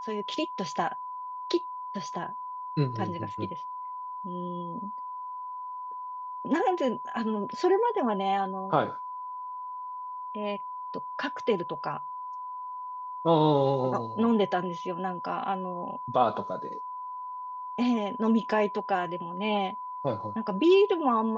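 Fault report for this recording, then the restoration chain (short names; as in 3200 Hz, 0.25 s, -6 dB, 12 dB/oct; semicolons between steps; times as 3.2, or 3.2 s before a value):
tone 1000 Hz -35 dBFS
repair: notch 1000 Hz, Q 30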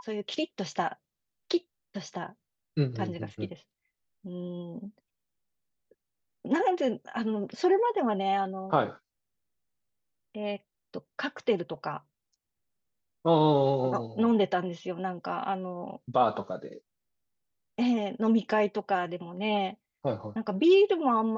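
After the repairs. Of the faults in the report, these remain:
none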